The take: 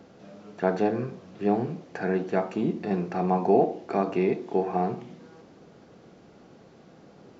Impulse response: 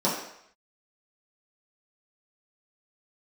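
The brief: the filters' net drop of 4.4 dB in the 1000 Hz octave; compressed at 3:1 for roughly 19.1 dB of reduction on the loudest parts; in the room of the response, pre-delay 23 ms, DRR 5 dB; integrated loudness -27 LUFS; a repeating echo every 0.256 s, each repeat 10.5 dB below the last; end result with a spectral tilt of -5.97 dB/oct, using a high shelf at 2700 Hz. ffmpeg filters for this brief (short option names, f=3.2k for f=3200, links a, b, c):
-filter_complex "[0:a]equalizer=f=1k:t=o:g=-8,highshelf=f=2.7k:g=5.5,acompressor=threshold=-45dB:ratio=3,aecho=1:1:256|512|768:0.299|0.0896|0.0269,asplit=2[a][b];[1:a]atrim=start_sample=2205,adelay=23[c];[b][c]afir=irnorm=-1:irlink=0,volume=-18.5dB[d];[a][d]amix=inputs=2:normalize=0,volume=15.5dB"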